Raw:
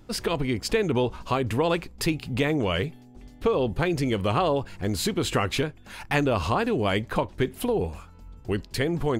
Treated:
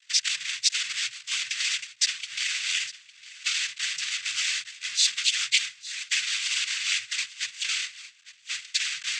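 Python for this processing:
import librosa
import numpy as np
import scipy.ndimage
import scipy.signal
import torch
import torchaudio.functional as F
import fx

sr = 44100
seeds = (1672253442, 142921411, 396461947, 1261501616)

p1 = fx.halfwave_hold(x, sr)
p2 = fx.noise_vocoder(p1, sr, seeds[0], bands=16)
p3 = fx.over_compress(p2, sr, threshold_db=-24.0, ratio=-1.0)
p4 = p2 + (p3 * librosa.db_to_amplitude(-1.0))
p5 = scipy.signal.sosfilt(scipy.signal.cheby2(4, 50, 840.0, 'highpass', fs=sr, output='sos'), p4)
y = p5 + 10.0 ** (-17.5 / 20.0) * np.pad(p5, (int(856 * sr / 1000.0), 0))[:len(p5)]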